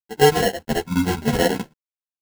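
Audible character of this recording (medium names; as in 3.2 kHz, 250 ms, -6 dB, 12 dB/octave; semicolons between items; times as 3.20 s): a quantiser's noise floor 10-bit, dither none; chopped level 9.4 Hz, depth 65%, duty 75%; aliases and images of a low sample rate 1.2 kHz, jitter 0%; a shimmering, thickened sound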